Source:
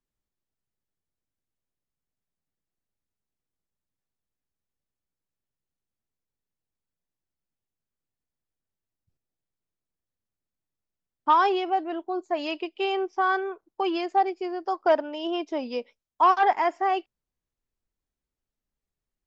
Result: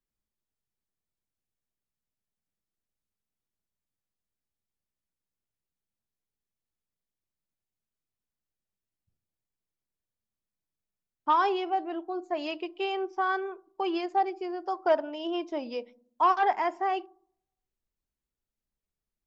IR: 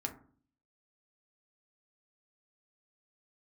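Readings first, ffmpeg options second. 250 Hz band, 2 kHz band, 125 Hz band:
−3.0 dB, −4.0 dB, can't be measured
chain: -filter_complex "[0:a]asplit=2[link_01][link_02];[1:a]atrim=start_sample=2205,asetrate=34839,aresample=44100,lowshelf=frequency=400:gain=6[link_03];[link_02][link_03]afir=irnorm=-1:irlink=0,volume=-14.5dB[link_04];[link_01][link_04]amix=inputs=2:normalize=0,volume=-5.5dB"

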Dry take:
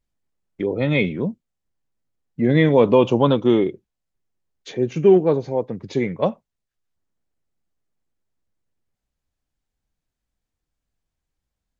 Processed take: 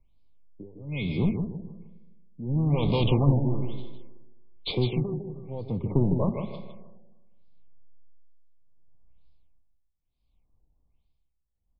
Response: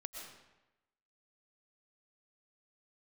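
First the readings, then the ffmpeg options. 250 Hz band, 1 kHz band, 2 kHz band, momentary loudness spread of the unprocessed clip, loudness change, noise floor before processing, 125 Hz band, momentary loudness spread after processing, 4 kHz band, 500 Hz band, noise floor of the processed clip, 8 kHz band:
−8.0 dB, −11.5 dB, −14.0 dB, 12 LU, −8.5 dB, −83 dBFS, 0.0 dB, 16 LU, −3.0 dB, −14.5 dB, −75 dBFS, can't be measured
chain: -filter_complex "[0:a]acontrast=80,aexciter=amount=1.4:drive=7.4:freq=3200,acrossover=split=170|3000[link_01][link_02][link_03];[link_02]acompressor=threshold=-23dB:ratio=6[link_04];[link_01][link_04][link_03]amix=inputs=3:normalize=0,flanger=delay=7.4:depth=6.1:regen=89:speed=0.92:shape=sinusoidal,tremolo=f=0.66:d=0.96,equalizer=frequency=1800:width_type=o:width=0.47:gain=6.5,asplit=2[link_05][link_06];[1:a]atrim=start_sample=2205,asetrate=37044,aresample=44100[link_07];[link_06][link_07]afir=irnorm=-1:irlink=0,volume=-8.5dB[link_08];[link_05][link_08]amix=inputs=2:normalize=0,aeval=exprs='clip(val(0),-1,0.0398)':channel_layout=same,asuperstop=centerf=1600:order=20:qfactor=1.8,lowshelf=frequency=130:gain=11.5,aecho=1:1:156|312|468|624:0.447|0.17|0.0645|0.0245,afftfilt=real='re*lt(b*sr/1024,950*pow(5300/950,0.5+0.5*sin(2*PI*1.1*pts/sr)))':imag='im*lt(b*sr/1024,950*pow(5300/950,0.5+0.5*sin(2*PI*1.1*pts/sr)))':win_size=1024:overlap=0.75"

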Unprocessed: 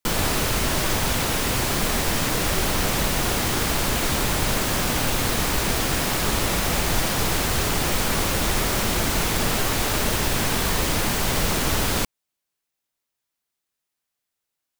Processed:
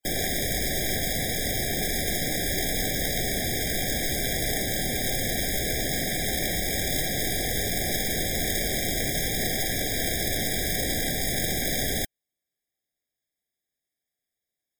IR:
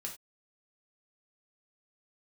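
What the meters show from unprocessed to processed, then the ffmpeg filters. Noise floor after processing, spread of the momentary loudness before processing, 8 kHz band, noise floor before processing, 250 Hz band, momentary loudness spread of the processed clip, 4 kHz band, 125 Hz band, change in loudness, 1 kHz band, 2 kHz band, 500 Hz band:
below −85 dBFS, 0 LU, −3.0 dB, −83 dBFS, −5.0 dB, 1 LU, −4.0 dB, −6.0 dB, −3.5 dB, −11.0 dB, −4.5 dB, −4.0 dB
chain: -af "acontrast=30,aeval=exprs='(mod(3.76*val(0)+1,2)-1)/3.76':channel_layout=same,afftfilt=real='re*eq(mod(floor(b*sr/1024/790),2),0)':imag='im*eq(mod(floor(b*sr/1024/790),2),0)':win_size=1024:overlap=0.75,volume=-7dB"

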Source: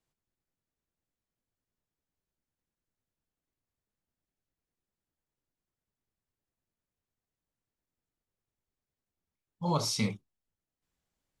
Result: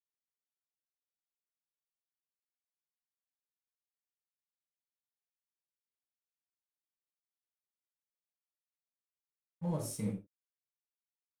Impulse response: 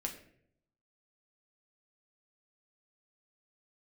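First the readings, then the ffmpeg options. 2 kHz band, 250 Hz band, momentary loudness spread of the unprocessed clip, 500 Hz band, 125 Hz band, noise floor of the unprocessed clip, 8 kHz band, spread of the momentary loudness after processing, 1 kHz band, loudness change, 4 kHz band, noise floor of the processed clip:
−17.0 dB, −4.0 dB, 10 LU, −5.5 dB, −4.5 dB, below −85 dBFS, −8.0 dB, 6 LU, −14.5 dB, −7.0 dB, −20.0 dB, below −85 dBFS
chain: -filter_complex "[0:a]firequalizer=gain_entry='entry(640,0);entry(930,-10);entry(4600,-18);entry(8800,5)':delay=0.05:min_phase=1,alimiter=level_in=0.5dB:limit=-24dB:level=0:latency=1:release=20,volume=-0.5dB,aeval=exprs='sgn(val(0))*max(abs(val(0))-0.00282,0)':channel_layout=same[link_01];[1:a]atrim=start_sample=2205,afade=type=out:start_time=0.15:duration=0.01,atrim=end_sample=7056[link_02];[link_01][link_02]afir=irnorm=-1:irlink=0,volume=-3.5dB"

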